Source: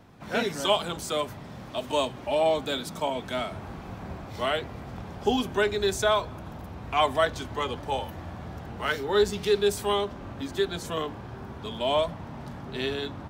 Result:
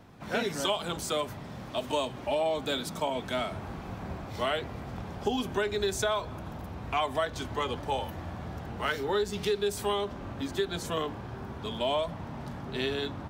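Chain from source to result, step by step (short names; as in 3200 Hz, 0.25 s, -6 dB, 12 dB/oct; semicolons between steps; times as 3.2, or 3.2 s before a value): compressor 6:1, threshold -25 dBFS, peak gain reduction 8 dB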